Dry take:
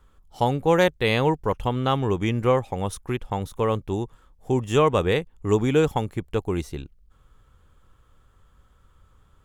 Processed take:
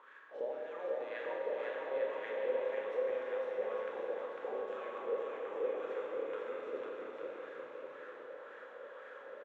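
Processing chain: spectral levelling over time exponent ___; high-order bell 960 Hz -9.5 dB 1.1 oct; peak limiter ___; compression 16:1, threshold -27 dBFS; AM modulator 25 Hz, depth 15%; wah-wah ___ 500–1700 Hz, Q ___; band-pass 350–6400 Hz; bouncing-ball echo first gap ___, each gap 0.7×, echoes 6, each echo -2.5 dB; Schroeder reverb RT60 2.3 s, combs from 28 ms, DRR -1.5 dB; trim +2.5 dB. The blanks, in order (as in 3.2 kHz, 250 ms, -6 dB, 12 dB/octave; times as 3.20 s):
0.6, -13 dBFS, 1.9 Hz, 6.5, 500 ms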